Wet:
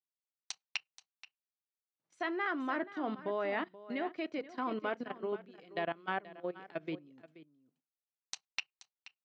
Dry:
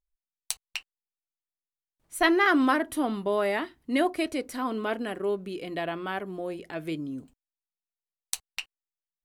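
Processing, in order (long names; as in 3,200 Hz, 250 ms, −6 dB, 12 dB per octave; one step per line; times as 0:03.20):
on a send at −20 dB: parametric band 330 Hz −4 dB 0.58 octaves + convolution reverb RT60 0.20 s, pre-delay 6 ms
on the sum: output level in coarse steps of 16 dB
elliptic band-pass filter 140–6,000 Hz
treble cut that deepens with the level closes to 3,000 Hz, closed at −32 dBFS
low-shelf EQ 420 Hz −3.5 dB
single-tap delay 479 ms −11.5 dB
expander for the loud parts 1.5 to 1, over −46 dBFS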